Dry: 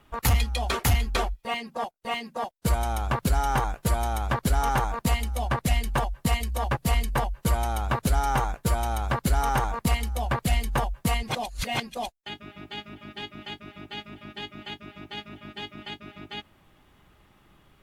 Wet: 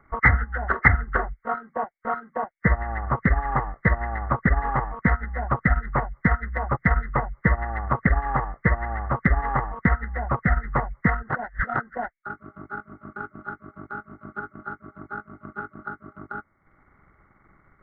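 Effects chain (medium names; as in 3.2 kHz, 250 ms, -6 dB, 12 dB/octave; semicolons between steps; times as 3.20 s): knee-point frequency compression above 1.1 kHz 4:1; transient shaper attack +7 dB, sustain -8 dB; trim -1 dB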